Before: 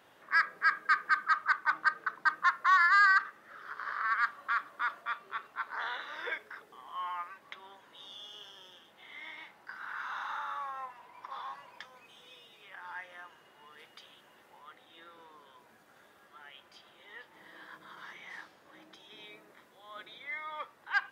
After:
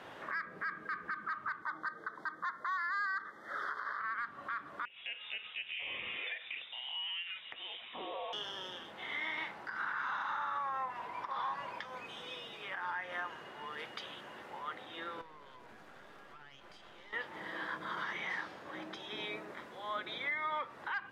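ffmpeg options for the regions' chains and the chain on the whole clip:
ffmpeg -i in.wav -filter_complex "[0:a]asettb=1/sr,asplit=3[link_01][link_02][link_03];[link_01]atrim=end=1.624[link_04];[link_02]atrim=start=1.62:end=4,asetpts=PTS-STARTPTS,afade=type=in:duration=0.004:curve=qsin,afade=type=out:start_time=2.376:duration=0.004:curve=qsin,asuperstop=centerf=2600:order=12:qfactor=2.6,bass=frequency=250:gain=-9,treble=frequency=4000:gain=3[link_05];[link_03]atrim=start=3.996[link_06];[link_04][link_05]acrossfade=duration=0.004:curve1=hsin:curve2=qsin[link_07];[link_07][link_06]acrossfade=duration=0.004:curve1=qsin:curve2=hsin,asettb=1/sr,asplit=3[link_08][link_09][link_10];[link_08]atrim=end=4.854[link_11];[link_09]atrim=start=4.85:end=8.33,asetpts=PTS-STARTPTS,afade=type=in:duration=0.004:curve=qsin,afade=type=out:start_time=3.476:duration=0.004:curve=qsin,lowpass=frequency=3400:width_type=q:width=0.5098,lowpass=frequency=3400:width_type=q:width=0.6013,lowpass=frequency=3400:width_type=q:width=0.9,lowpass=frequency=3400:width_type=q:width=2.563,afreqshift=-4000,acompressor=threshold=-48dB:ratio=4:attack=3.2:release=140:knee=1:detection=peak[link_12];[link_10]atrim=start=8.326[link_13];[link_11][link_12]acrossfade=duration=0.004:curve1=hsin:curve2=qsin[link_14];[link_14][link_13]acrossfade=duration=0.004:curve1=qsin:curve2=hsin,asettb=1/sr,asplit=3[link_15][link_16][link_17];[link_15]atrim=end=15.214[link_18];[link_16]atrim=start=15.21:end=17.13,asetpts=PTS-STARTPTS,afade=type=in:duration=0.004:curve=qsin,afade=type=out:start_time=1.916:duration=0.004:curve=qsin,aeval=exprs='if(lt(val(0),0),0.251*val(0),val(0))':channel_layout=same,acompressor=threshold=-60dB:ratio=10:attack=3.2:release=140:knee=1:detection=peak[link_19];[link_17]atrim=start=17.126[link_20];[link_18][link_19]acrossfade=duration=0.004:curve1=hsin:curve2=qsin[link_21];[link_21][link_20]acrossfade=duration=0.004:curve1=qsin:curve2=hsin,acrossover=split=320[link_22][link_23];[link_23]acompressor=threshold=-44dB:ratio=3[link_24];[link_22][link_24]amix=inputs=2:normalize=0,aemphasis=mode=reproduction:type=50fm,alimiter=level_in=16dB:limit=-24dB:level=0:latency=1:release=131,volume=-16dB,volume=11.5dB" out.wav

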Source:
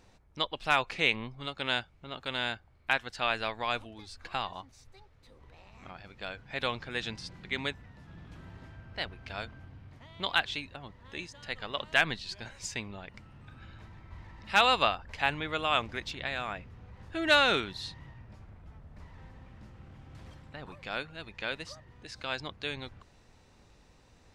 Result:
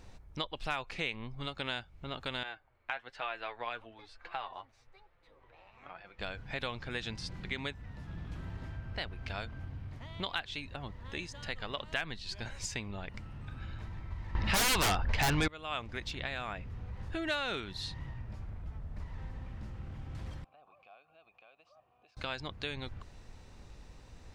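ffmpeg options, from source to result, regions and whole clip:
ffmpeg -i in.wav -filter_complex "[0:a]asettb=1/sr,asplit=3[link_01][link_02][link_03];[link_01]atrim=end=2.434[link_04];[link_02]atrim=start=2.43:end=6.19,asetpts=PTS-STARTPTS,afade=type=in:duration=0.004:curve=qsin,afade=type=out:start_time=3.756:duration=0.004:curve=qsin,acrossover=split=370 3300:gain=0.178 1 0.158[link_05][link_06][link_07];[link_05][link_06][link_07]amix=inputs=3:normalize=0,flanger=delay=5.7:depth=3.3:regen=37:speed=1.1:shape=sinusoidal[link_08];[link_03]atrim=start=6.186[link_09];[link_04][link_08]acrossfade=duration=0.004:curve1=hsin:curve2=qsin[link_10];[link_10][link_09]acrossfade=duration=0.004:curve1=qsin:curve2=hsin,asettb=1/sr,asplit=3[link_11][link_12][link_13];[link_11]atrim=end=14.354[link_14];[link_12]atrim=start=14.35:end=15.48,asetpts=PTS-STARTPTS,afade=type=in:duration=0.004:curve=qsin,afade=type=out:start_time=1.126:duration=0.004:curve=qsin,lowpass=4800,acontrast=46,aeval=exprs='0.531*sin(PI/2*7.94*val(0)/0.531)':channel_layout=same[link_15];[link_13]atrim=start=15.476[link_16];[link_14][link_15]acrossfade=duration=0.004:curve1=hsin:curve2=qsin[link_17];[link_17][link_16]acrossfade=duration=0.004:curve1=qsin:curve2=hsin,asettb=1/sr,asplit=3[link_18][link_19][link_20];[link_18]atrim=end=20.444[link_21];[link_19]atrim=start=20.44:end=22.17,asetpts=PTS-STARTPTS,afade=type=in:duration=0.004:curve=qsin,afade=type=out:start_time=1.726:duration=0.004:curve=qsin,acompressor=threshold=-48dB:ratio=5:attack=3.2:release=140:knee=1:detection=peak,asplit=3[link_22][link_23][link_24];[link_22]bandpass=frequency=730:width_type=q:width=8,volume=0dB[link_25];[link_23]bandpass=frequency=1090:width_type=q:width=8,volume=-6dB[link_26];[link_24]bandpass=frequency=2440:width_type=q:width=8,volume=-9dB[link_27];[link_25][link_26][link_27]amix=inputs=3:normalize=0[link_28];[link_20]atrim=start=22.166[link_29];[link_21][link_28]acrossfade=duration=0.004:curve1=hsin:curve2=qsin[link_30];[link_30][link_29]acrossfade=duration=0.004:curve1=qsin:curve2=hsin,lowshelf=frequency=81:gain=10.5,acompressor=threshold=-39dB:ratio=3,volume=3dB" out.wav

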